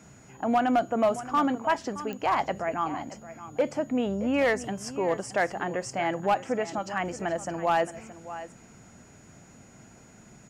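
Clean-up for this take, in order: clip repair -17 dBFS; de-click; band-stop 6.8 kHz, Q 30; inverse comb 622 ms -14.5 dB

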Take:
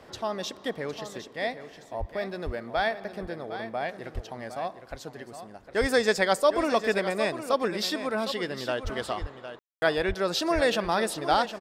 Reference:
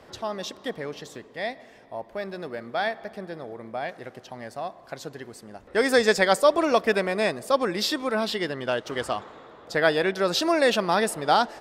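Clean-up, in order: de-plosive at 1.99/2.45/4.14/5.80/8.83/9.20/10.07/10.54 s; room tone fill 9.59–9.82 s; inverse comb 759 ms -11 dB; trim 0 dB, from 4.80 s +3.5 dB

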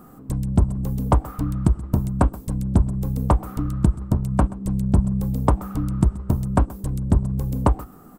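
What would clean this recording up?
inverse comb 128 ms -20 dB

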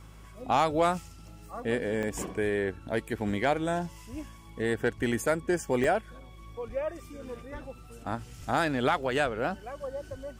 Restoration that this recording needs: clip repair -15 dBFS; de-hum 52.6 Hz, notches 3; interpolate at 1.28/2.03/5.84/9.03/9.62 s, 1.8 ms

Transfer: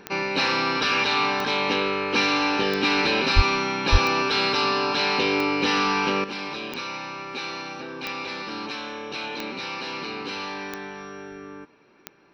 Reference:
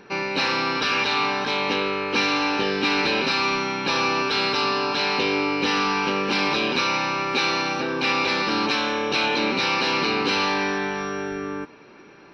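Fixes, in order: de-click; de-plosive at 3.35/3.91 s; gain correction +10 dB, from 6.24 s

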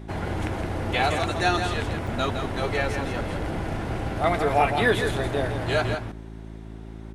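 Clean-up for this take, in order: de-hum 54.6 Hz, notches 7; interpolate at 2.07 s, 4 ms; inverse comb 165 ms -7 dB

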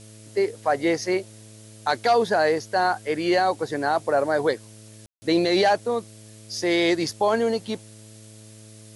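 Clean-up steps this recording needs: de-hum 108.3 Hz, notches 6; room tone fill 5.06–5.22 s; noise print and reduce 23 dB

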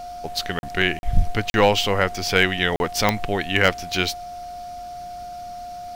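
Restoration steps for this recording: de-click; band-stop 710 Hz, Q 30; interpolate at 0.59/0.99/1.50/2.76 s, 41 ms

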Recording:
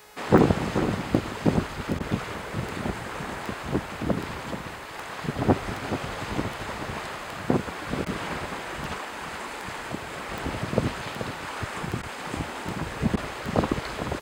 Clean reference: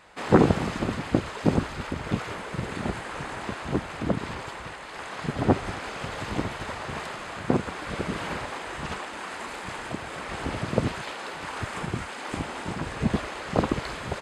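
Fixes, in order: de-click; de-hum 422 Hz, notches 38; interpolate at 1.99/8.05/12.02/13.16 s, 10 ms; inverse comb 431 ms -9.5 dB

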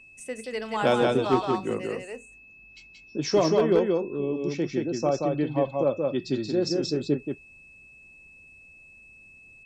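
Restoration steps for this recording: clip repair -12.5 dBFS; band-stop 2.6 kHz, Q 30; inverse comb 179 ms -3 dB

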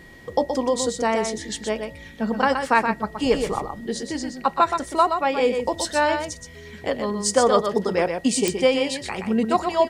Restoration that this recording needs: de-click; band-stop 1.9 kHz, Q 30; expander -33 dBFS, range -21 dB; inverse comb 123 ms -6.5 dB

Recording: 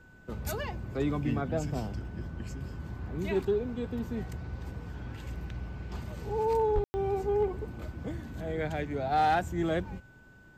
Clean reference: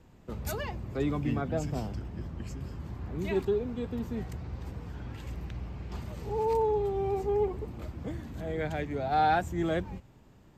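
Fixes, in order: clip repair -19.5 dBFS; band-stop 1.5 kHz, Q 30; 6.74–6.86 s: high-pass 140 Hz 24 dB/octave; room tone fill 6.84–6.94 s

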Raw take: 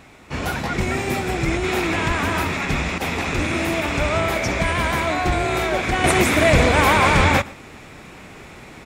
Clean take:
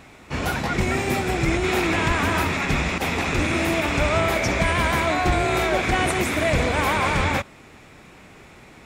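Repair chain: inverse comb 119 ms -22 dB; gain correction -6 dB, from 6.04 s

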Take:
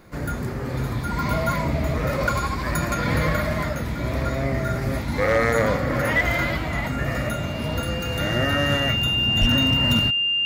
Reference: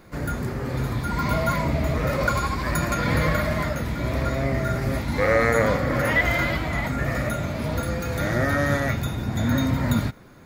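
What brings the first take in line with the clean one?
clip repair -12 dBFS; band-stop 2.8 kHz, Q 30; 9.40–9.52 s: high-pass 140 Hz 24 dB/octave

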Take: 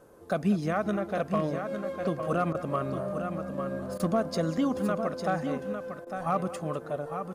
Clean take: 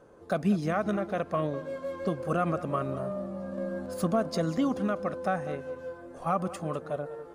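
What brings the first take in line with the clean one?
clip repair -17.5 dBFS; interpolate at 2.53/3.98/6.05 s, 15 ms; expander -33 dBFS, range -21 dB; inverse comb 854 ms -7.5 dB

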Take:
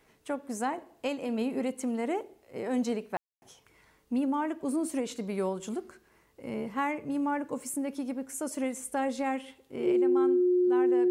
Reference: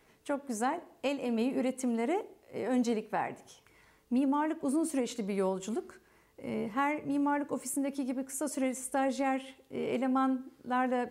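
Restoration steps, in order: band-stop 360 Hz, Q 30; room tone fill 3.17–3.42 s; gain correction +6.5 dB, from 9.92 s

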